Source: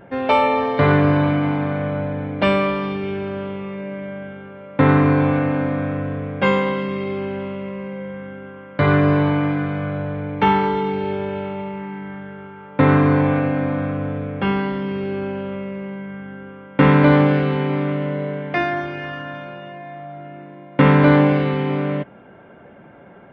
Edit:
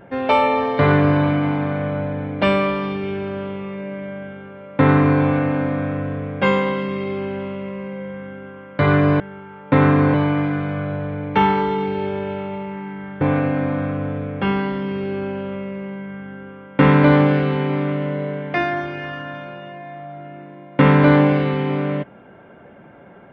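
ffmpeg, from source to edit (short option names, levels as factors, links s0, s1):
-filter_complex "[0:a]asplit=4[s0][s1][s2][s3];[s0]atrim=end=9.202[s4];[s1]atrim=start=12.268:end=13.212[s5];[s2]atrim=start=9.198:end=12.272[s6];[s3]atrim=start=13.208[s7];[s4][s5]acrossfade=d=0.004:c1=hsin:c2=hsin[s8];[s8][s6]acrossfade=d=0.004:c1=hsin:c2=hsin[s9];[s9][s7]acrossfade=d=0.004:c1=hsin:c2=hsin"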